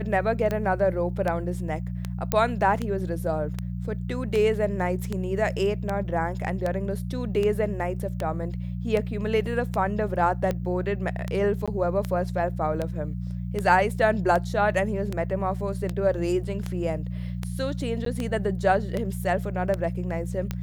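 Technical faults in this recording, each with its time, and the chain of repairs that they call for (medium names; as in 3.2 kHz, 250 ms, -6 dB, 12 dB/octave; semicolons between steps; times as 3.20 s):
hum 60 Hz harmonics 3 -31 dBFS
tick 78 rpm -15 dBFS
2.32 s: pop -7 dBFS
11.66–11.68 s: dropout 16 ms
18.05–18.06 s: dropout 13 ms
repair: de-click; de-hum 60 Hz, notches 3; interpolate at 11.66 s, 16 ms; interpolate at 18.05 s, 13 ms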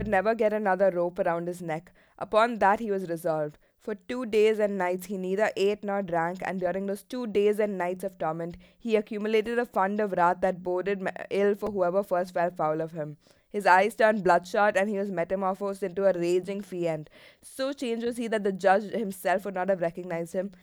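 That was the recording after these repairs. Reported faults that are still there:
nothing left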